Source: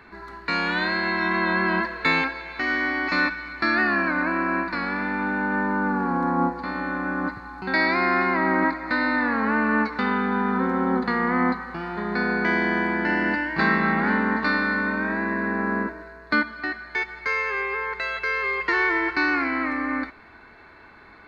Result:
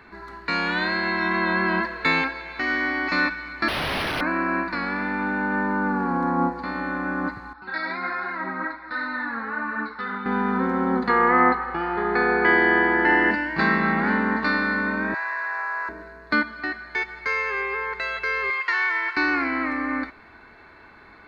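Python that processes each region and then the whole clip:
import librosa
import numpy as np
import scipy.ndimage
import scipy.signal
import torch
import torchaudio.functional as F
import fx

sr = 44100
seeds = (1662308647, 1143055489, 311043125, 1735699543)

y = fx.chain(x, sr, fx.highpass(hz=160.0, slope=24),
    fx.overflow_wrap(gain_db=19.5),
    fx.resample_linear(factor=6), at=(3.68, 4.21))
y = fx.chain(y, sr, fx.cheby_ripple(hz=5400.0, ripple_db=9),
    fx.room_flutter(wall_m=7.5, rt60_s=0.22),
    fx.ensemble(), at=(7.53, 10.26))
y = fx.chain(y, sr, fx.lowpass(hz=3300.0, slope=12),
    fx.peak_eq(hz=1100.0, db=5.5, octaves=2.9),
    fx.comb(ms=2.4, depth=0.58), at=(11.09, 13.31))
y = fx.chain(y, sr, fx.highpass(hz=800.0, slope=24),
    fx.peak_eq(hz=5500.0, db=7.5, octaves=0.5),
    fx.env_flatten(amount_pct=70), at=(15.14, 15.89))
y = fx.chain(y, sr, fx.highpass(hz=1000.0, slope=12),
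    fx.band_squash(depth_pct=40), at=(18.5, 19.17))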